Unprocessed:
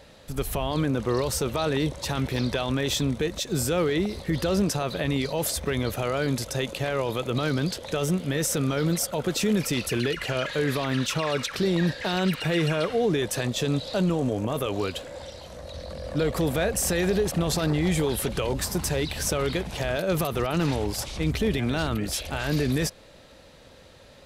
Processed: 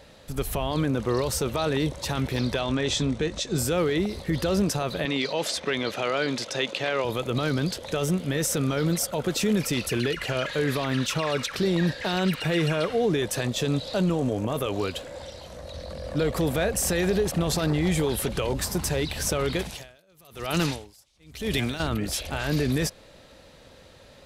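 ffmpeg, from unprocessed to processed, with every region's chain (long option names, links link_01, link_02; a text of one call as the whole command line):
ffmpeg -i in.wav -filter_complex "[0:a]asettb=1/sr,asplit=3[link_01][link_02][link_03];[link_01]atrim=end=2.604[link_04];[link_02]atrim=start=2.6:end=3.58,asetpts=PTS-STARTPTS,afade=type=in:duration=0.004:curve=qsin,afade=type=out:start_time=0.976:duration=0.004:curve=qsin,lowpass=frequency=8400:width=0.5412,lowpass=frequency=8400:width=1.3066,asplit=2[link_05][link_06];[link_06]adelay=19,volume=-12dB[link_07];[link_05][link_07]amix=inputs=2:normalize=0,atrim=end_sample=43218[link_08];[link_03]atrim=start=3.576[link_09];[link_04][link_08]acrossfade=duration=0.004:curve1=hsin:curve2=qsin[link_10];[link_10][link_09]acrossfade=duration=0.004:curve1=qsin:curve2=hsin,asettb=1/sr,asplit=3[link_11][link_12][link_13];[link_11]atrim=end=5.054[link_14];[link_12]atrim=start=5.05:end=7.05,asetpts=PTS-STARTPTS,afade=type=in:duration=0.004:curve=qsin,afade=type=out:start_time=1.996:duration=0.004:curve=qsin,highpass=220,lowpass=4200,highshelf=frequency=2100:gain=9[link_15];[link_13]atrim=start=7.046[link_16];[link_14][link_15]acrossfade=duration=0.004:curve1=hsin:curve2=qsin[link_17];[link_17][link_16]acrossfade=duration=0.004:curve1=qsin:curve2=hsin,asettb=1/sr,asplit=3[link_18][link_19][link_20];[link_18]atrim=end=19.594[link_21];[link_19]atrim=start=19.59:end=21.8,asetpts=PTS-STARTPTS,afade=type=in:duration=0.004:curve=qsin,afade=type=out:start_time=2.206:duration=0.004:curve=qsin,highshelf=frequency=2500:gain=11,aeval=exprs='val(0)*pow(10,-37*(0.5-0.5*cos(2*PI*1*n/s))/20)':channel_layout=same[link_22];[link_20]atrim=start=21.796[link_23];[link_21][link_22]acrossfade=duration=0.004:curve1=hsin:curve2=qsin[link_24];[link_24][link_23]acrossfade=duration=0.004:curve1=qsin:curve2=hsin" out.wav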